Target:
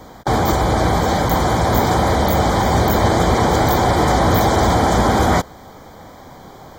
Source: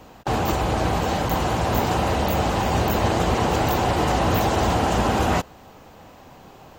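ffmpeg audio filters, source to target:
-filter_complex "[0:a]asplit=2[a][b];[b]volume=22dB,asoftclip=hard,volume=-22dB,volume=-11dB[c];[a][c]amix=inputs=2:normalize=0,asuperstop=centerf=2700:order=8:qfactor=4,volume=4.5dB"

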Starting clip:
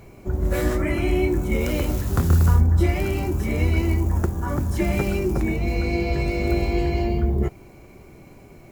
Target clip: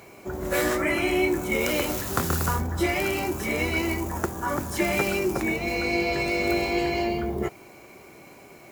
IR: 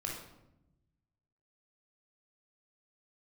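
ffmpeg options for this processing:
-af "highpass=f=690:p=1,volume=5.5dB"

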